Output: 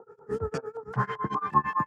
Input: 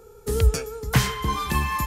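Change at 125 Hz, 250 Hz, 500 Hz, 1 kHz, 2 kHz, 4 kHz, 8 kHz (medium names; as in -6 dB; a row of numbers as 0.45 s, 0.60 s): -11.5 dB, -6.0 dB, -4.0 dB, +1.0 dB, -7.5 dB, -20.5 dB, under -20 dB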